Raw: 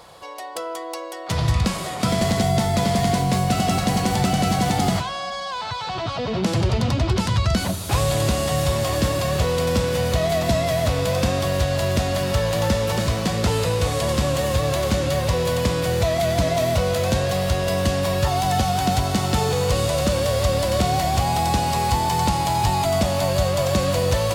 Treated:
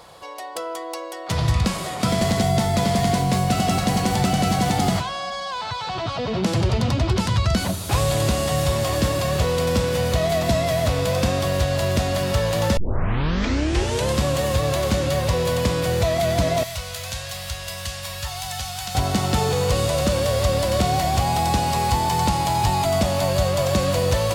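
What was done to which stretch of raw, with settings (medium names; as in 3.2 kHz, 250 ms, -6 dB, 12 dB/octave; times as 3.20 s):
12.77 s: tape start 1.41 s
16.63–18.95 s: amplifier tone stack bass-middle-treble 10-0-10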